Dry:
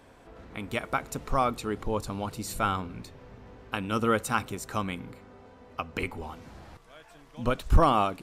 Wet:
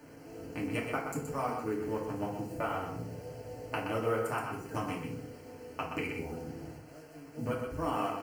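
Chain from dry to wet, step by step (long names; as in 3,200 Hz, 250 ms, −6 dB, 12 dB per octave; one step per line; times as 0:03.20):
adaptive Wiener filter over 41 samples
0:02.22–0:04.46: graphic EQ with 15 bands 250 Hz −5 dB, 630 Hz +8 dB, 6,300 Hz −10 dB
downward compressor 4 to 1, threshold −37 dBFS, peak gain reduction 19.5 dB
high-pass filter 110 Hz 12 dB per octave
high-shelf EQ 5,900 Hz +8.5 dB
bit reduction 10 bits
Butterworth band-reject 3,600 Hz, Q 3.2
single-tap delay 124 ms −6 dB
feedback delay network reverb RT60 0.58 s, low-frequency decay 0.8×, high-frequency decay 0.65×, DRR −4 dB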